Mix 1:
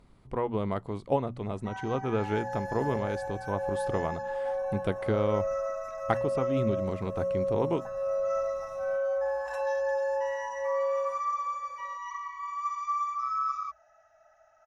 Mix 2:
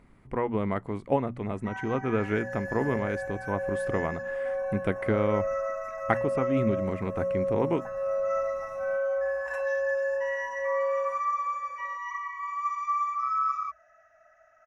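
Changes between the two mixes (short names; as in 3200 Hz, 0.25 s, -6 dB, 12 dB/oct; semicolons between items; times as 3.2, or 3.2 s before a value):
first sound: add Butterworth band-stop 840 Hz, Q 5.5; master: add graphic EQ 250/2000/4000 Hz +4/+9/-8 dB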